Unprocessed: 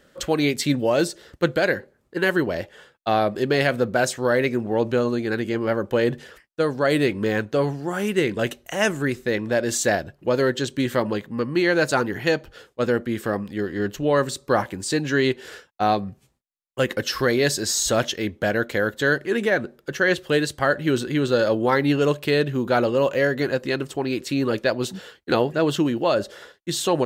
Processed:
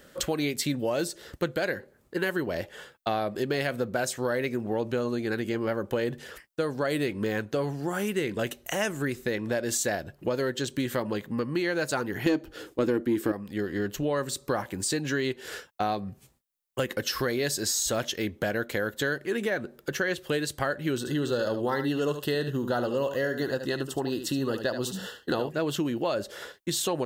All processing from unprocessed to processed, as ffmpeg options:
-filter_complex "[0:a]asettb=1/sr,asplit=3[a][b][c];[a]atrim=end=12.264[d];[b]atrim=start=12.26:end=13.32,asetpts=PTS-STARTPTS,afade=t=in:d=0.004:c=qsin,afade=t=out:st=1.056:d=0.004:c=qsin,equalizer=f=310:t=o:w=0.51:g=15,acontrast=33[e];[c]atrim=start=13.316[f];[d][e]acrossfade=d=0.004:c1=hsin:c2=qsin[g];[g][f]acrossfade=d=0.004:c1=qsin:c2=hsin,asettb=1/sr,asplit=3[h][i][j];[h]atrim=end=20.984[k];[i]atrim=start=20.98:end=25.49,asetpts=PTS-STARTPTS,afade=t=in:d=0.004:c=qsin,afade=t=out:st=4.506:d=0.004:c=qsin,asuperstop=centerf=2300:order=8:qfactor=3.9,aecho=1:1:74:0.316,atrim=end_sample=198891[l];[j]atrim=start=25.486[m];[k][l]acrossfade=d=0.004:c1=hsin:c2=qsin[n];[n][m]acrossfade=d=0.004:c1=qsin:c2=hsin,highshelf=f=10k:g=10,acompressor=threshold=-31dB:ratio=3,volume=2.5dB"

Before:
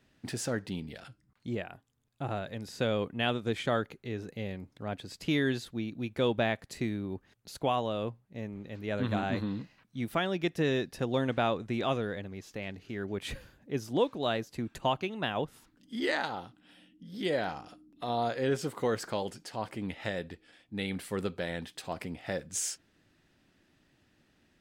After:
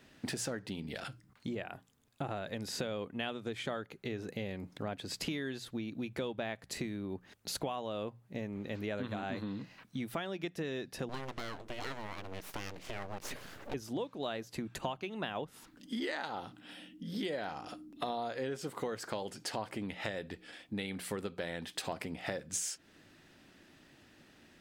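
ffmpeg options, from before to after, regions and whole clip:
-filter_complex "[0:a]asettb=1/sr,asplit=3[a][b][c];[a]atrim=end=11.094[d];[b]atrim=start=11.09:end=13.74,asetpts=PTS-STARTPTS,afade=t=in:d=0.004:c=qsin,afade=t=out:st=2.646:d=0.004:c=qsin,bandreject=f=76.42:t=h:w=4,bandreject=f=152.84:t=h:w=4,bandreject=f=229.26:t=h:w=4,acompressor=mode=upward:threshold=-44dB:ratio=2.5:attack=3.2:release=140:knee=2.83:detection=peak,aeval=exprs='abs(val(0))':c=same[e];[c]atrim=start=13.736[f];[d][e]acrossfade=d=0.004:c1=hsin:c2=qsin[g];[g][f]acrossfade=d=0.004:c1=qsin:c2=hsin,acompressor=threshold=-42dB:ratio=12,lowshelf=f=120:g=-7,bandreject=f=60:t=h:w=6,bandreject=f=120:t=h:w=6,bandreject=f=180:t=h:w=6,volume=8.5dB"

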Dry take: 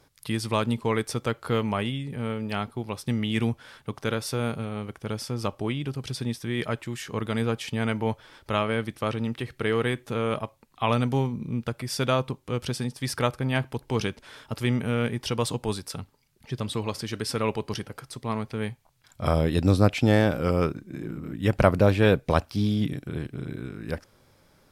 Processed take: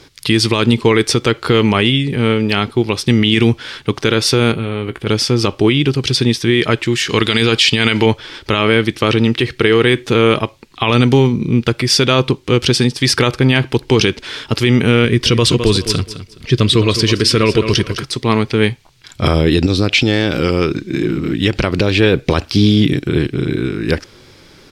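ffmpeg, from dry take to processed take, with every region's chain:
-filter_complex "[0:a]asettb=1/sr,asplit=3[a][b][c];[a]atrim=end=4.524[d];[b]atrim=start=4.52:end=5.07,asetpts=PTS-STARTPTS,afade=t=in:d=0.004:c=qsin,afade=t=out:st=0.546:d=0.004:c=qsin,equalizer=f=5.7k:w=2.5:g=-15,acompressor=threshold=-33dB:ratio=4:attack=3.2:release=140:knee=1:detection=peak,asplit=2[e][f];[f]adelay=17,volume=-11.5dB[g];[e][g]amix=inputs=2:normalize=0,atrim=end_sample=24255[h];[c]atrim=start=5.066[i];[d][h]acrossfade=d=0.004:c1=hsin:c2=qsin[j];[j][i]acrossfade=d=0.004:c1=qsin:c2=hsin,asettb=1/sr,asplit=3[k][l][m];[k]atrim=end=7.094[n];[l]atrim=start=7.09:end=8.06,asetpts=PTS-STARTPTS,afade=t=in:d=0.004:c=qsin,afade=t=out:st=0.966:d=0.004:c=qsin,equalizer=f=4.8k:w=0.38:g=11.5,bandreject=f=6.1k:w=11[o];[m]atrim=start=8.056[p];[n][o]acrossfade=d=0.004:c1=hsin:c2=qsin[q];[q][p]acrossfade=d=0.004:c1=qsin:c2=hsin,asettb=1/sr,asplit=3[r][s][t];[r]atrim=end=15.054[u];[s]atrim=start=15.05:end=18.04,asetpts=PTS-STARTPTS,afade=t=in:d=0.004:c=qsin,afade=t=out:st=2.986:d=0.004:c=qsin,asuperstop=centerf=830:order=4:qfactor=4.9,lowshelf=f=84:g=10.5,aecho=1:1:210|420|630:0.237|0.0522|0.0115,atrim=end_sample=131859[v];[t]atrim=start=18.036[w];[u][v]acrossfade=d=0.004:c1=hsin:c2=qsin[x];[x][w]acrossfade=d=0.004:c1=qsin:c2=hsin,asettb=1/sr,asplit=3[y][z][aa];[y]atrim=end=19.664[ab];[z]atrim=start=19.66:end=22,asetpts=PTS-STARTPTS,afade=t=in:d=0.004:c=qsin,afade=t=out:st=2.336:d=0.004:c=qsin,equalizer=f=4k:t=o:w=1.7:g=5.5,acompressor=threshold=-28dB:ratio=4:attack=3.2:release=140:knee=1:detection=peak[ac];[aa]atrim=start=21.996[ad];[ab][ac]acrossfade=d=0.004:c1=hsin:c2=qsin[ae];[ae][ad]acrossfade=d=0.004:c1=qsin:c2=hsin,firequalizer=gain_entry='entry(230,0);entry(350,7);entry(590,-4);entry(2100,5);entry(2900,7);entry(4500,7);entry(7700,0);entry(12000,-7)':delay=0.05:min_phase=1,alimiter=level_in=16dB:limit=-1dB:release=50:level=0:latency=1,volume=-1dB"

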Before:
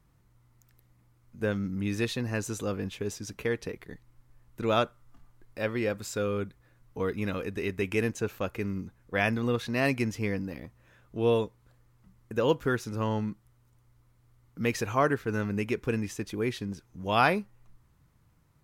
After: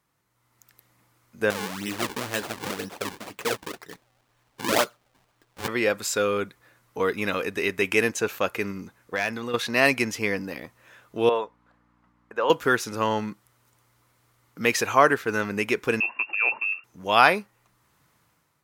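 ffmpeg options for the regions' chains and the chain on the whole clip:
-filter_complex "[0:a]asettb=1/sr,asplit=3[a][b][c];[a]atrim=end=1.504[d];[b]atrim=start=1.5:end=5.68,asetpts=PTS-STARTPTS,afade=t=in:d=0.004:c=qsin,afade=t=out:st=4.176:d=0.004:c=qsin,acrusher=samples=39:mix=1:aa=0.000001:lfo=1:lforange=62.4:lforate=2,flanger=delay=1:depth=6:regen=-46:speed=1.9:shape=sinusoidal[e];[c]atrim=start=5.676[f];[d][e]acrossfade=d=0.004:c1=hsin:c2=qsin[g];[g][f]acrossfade=d=0.004:c1=qsin:c2=hsin,asettb=1/sr,asplit=3[h][i][j];[h]atrim=end=8.714[k];[i]atrim=start=8.71:end=9.54,asetpts=PTS-STARTPTS,afade=t=in:d=0.004:c=qsin,afade=t=out:st=0.826:d=0.004:c=qsin,asoftclip=type=hard:threshold=-18.5dB,acompressor=threshold=-30dB:ratio=6:attack=3.2:release=140:knee=1:detection=peak[l];[j]atrim=start=9.536[m];[k][l]acrossfade=d=0.004:c1=hsin:c2=qsin[n];[n][m]acrossfade=d=0.004:c1=qsin:c2=hsin,asettb=1/sr,asplit=3[o][p][q];[o]atrim=end=11.294[r];[p]atrim=start=11.29:end=12.5,asetpts=PTS-STARTPTS,afade=t=in:d=0.004:c=qsin,afade=t=out:st=1.206:d=0.004:c=qsin,bandpass=f=1k:t=q:w=1.1,aeval=exprs='val(0)+0.001*(sin(2*PI*60*n/s)+sin(2*PI*2*60*n/s)/2+sin(2*PI*3*60*n/s)/3+sin(2*PI*4*60*n/s)/4+sin(2*PI*5*60*n/s)/5)':c=same[s];[q]atrim=start=12.496[t];[r][s]acrossfade=d=0.004:c1=hsin:c2=qsin[u];[u][t]acrossfade=d=0.004:c1=qsin:c2=hsin,asettb=1/sr,asplit=3[v][w][x];[v]atrim=end=16.004[y];[w]atrim=start=16:end=16.84,asetpts=PTS-STARTPTS,afade=t=in:d=0.004:c=qsin,afade=t=out:st=0.836:d=0.004:c=qsin,equalizer=f=420:t=o:w=1.8:g=-7.5,lowpass=f=2.4k:t=q:w=0.5098,lowpass=f=2.4k:t=q:w=0.6013,lowpass=f=2.4k:t=q:w=0.9,lowpass=f=2.4k:t=q:w=2.563,afreqshift=-2800[z];[x]atrim=start=16.836[aa];[y][z]acrossfade=d=0.004:c1=hsin:c2=qsin[ab];[ab][aa]acrossfade=d=0.004:c1=qsin:c2=hsin,highpass=f=680:p=1,dynaudnorm=f=150:g=7:m=10dB,volume=1dB"

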